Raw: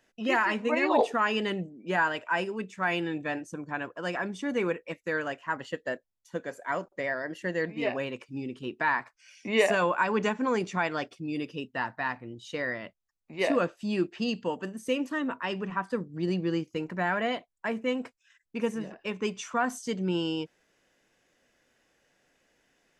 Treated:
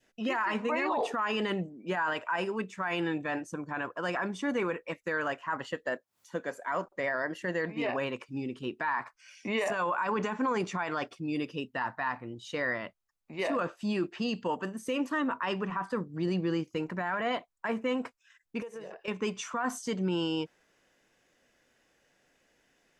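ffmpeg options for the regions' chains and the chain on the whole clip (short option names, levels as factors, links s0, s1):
-filter_complex "[0:a]asettb=1/sr,asplit=3[s0][s1][s2];[s0]atrim=end=5.864[s3];[s1]atrim=start=5.86:end=6.72,asetpts=PTS-STARTPTS,afade=t=in:d=0.004:c=qsin,afade=t=out:st=0.856:d=0.004:c=qsin,highpass=130,acompressor=mode=upward:threshold=0.00251:ratio=2.5:attack=3.2:release=140:knee=2.83:detection=peak[s4];[s2]atrim=start=6.716[s5];[s3][s4]acrossfade=d=0.004:c1=hsin:c2=qsin[s6];[s6][s5]acrossfade=d=0.004:c1=qsin:c2=hsin,asettb=1/sr,asplit=3[s7][s8][s9];[s7]atrim=end=18.624[s10];[s8]atrim=start=18.62:end=19.08,asetpts=PTS-STARTPTS,afade=t=in:d=0.004:c=qsin,afade=t=out:st=0.456:d=0.004:c=qsin,lowshelf=f=350:t=q:w=3:g=-7.5,acompressor=threshold=0.0126:ratio=10:attack=3.2:release=140:knee=1:detection=peak[s11];[s9]atrim=start=19.076[s12];[s10][s11]acrossfade=d=0.004:c1=hsin:c2=qsin[s13];[s13][s12]acrossfade=d=0.004:c1=qsin:c2=hsin,adynamicequalizer=threshold=0.00794:dfrequency=1100:dqfactor=1.3:tfrequency=1100:tqfactor=1.3:attack=5:release=100:ratio=0.375:range=4:mode=boostabove:tftype=bell,alimiter=limit=0.0794:level=0:latency=1:release=15"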